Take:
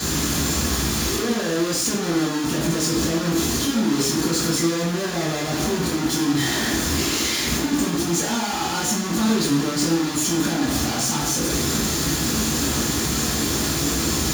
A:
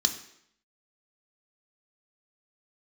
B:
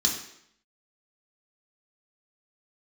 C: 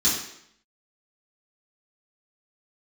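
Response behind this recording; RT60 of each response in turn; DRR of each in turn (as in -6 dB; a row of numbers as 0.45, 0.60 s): C; 0.70, 0.70, 0.70 s; 5.5, -1.0, -10.0 dB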